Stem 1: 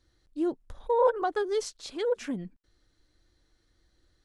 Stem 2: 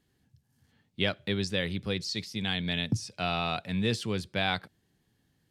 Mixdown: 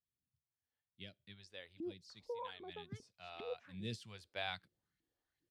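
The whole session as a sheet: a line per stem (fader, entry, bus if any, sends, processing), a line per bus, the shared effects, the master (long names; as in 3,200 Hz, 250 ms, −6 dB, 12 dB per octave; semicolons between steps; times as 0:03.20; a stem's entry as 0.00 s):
−9.5 dB, 1.40 s, no send, downward compressor 2.5 to 1, threshold −31 dBFS, peak gain reduction 9.5 dB; auto-filter band-pass saw up 2.5 Hz 230–2,700 Hz
0:03.67 −19.5 dB → 0:03.88 −11 dB, 0.00 s, no send, parametric band 650 Hz +4.5 dB 0.68 octaves; all-pass phaser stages 2, 1.1 Hz, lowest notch 150–1,000 Hz; expander for the loud parts 1.5 to 1, over −38 dBFS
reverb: not used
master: no processing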